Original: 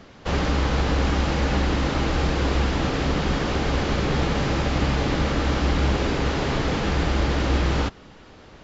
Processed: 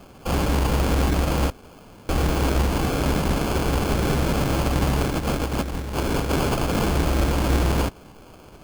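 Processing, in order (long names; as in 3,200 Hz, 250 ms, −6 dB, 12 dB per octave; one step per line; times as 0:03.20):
0:01.50–0:02.09: fill with room tone
0:05.04–0:06.85: compressor whose output falls as the input rises −24 dBFS, ratio −0.5
sample-rate reduction 1,900 Hz, jitter 0%
level +1 dB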